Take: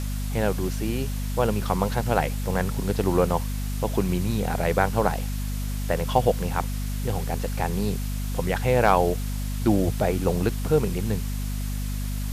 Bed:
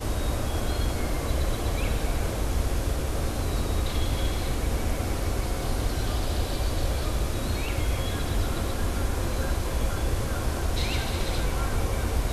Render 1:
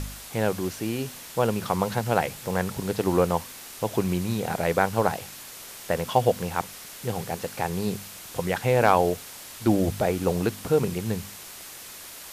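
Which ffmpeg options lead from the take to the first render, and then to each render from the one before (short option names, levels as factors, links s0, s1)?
-af "bandreject=f=50:t=h:w=4,bandreject=f=100:t=h:w=4,bandreject=f=150:t=h:w=4,bandreject=f=200:t=h:w=4,bandreject=f=250:t=h:w=4"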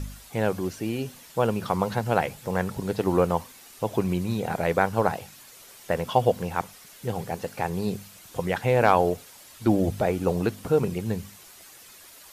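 -af "afftdn=nr=9:nf=-42"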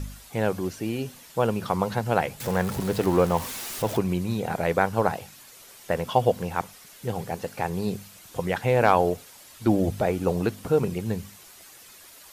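-filter_complex "[0:a]asettb=1/sr,asplit=3[s0][s1][s2];[s0]atrim=end=2.404[s3];[s1]atrim=start=2.4:end=3.98,asetpts=PTS-STARTPTS,afade=t=in:d=0.004:c=qsin,afade=t=out:st=1.576:d=0.004:c=qsin,aeval=exprs='val(0)+0.5*0.0299*sgn(val(0))':c=same[s4];[s2]atrim=start=3.976[s5];[s3][s4]acrossfade=d=0.004:c1=hsin:c2=qsin[s6];[s6][s5]acrossfade=d=0.004:c1=qsin:c2=hsin"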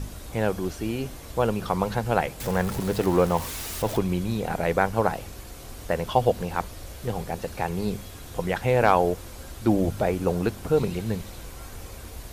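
-filter_complex "[1:a]volume=0.2[s0];[0:a][s0]amix=inputs=2:normalize=0"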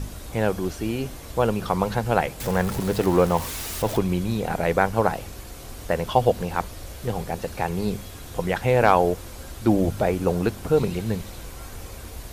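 -af "volume=1.26"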